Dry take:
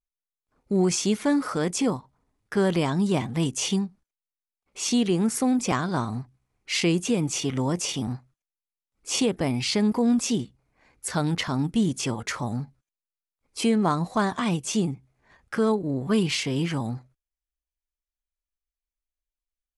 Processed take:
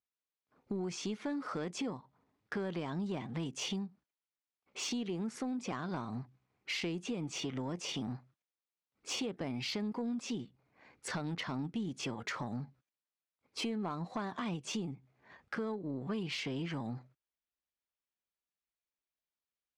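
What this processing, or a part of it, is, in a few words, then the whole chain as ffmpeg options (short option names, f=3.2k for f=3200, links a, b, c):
AM radio: -af "highpass=130,lowpass=4.4k,acompressor=threshold=-35dB:ratio=5,asoftclip=type=tanh:threshold=-27.5dB"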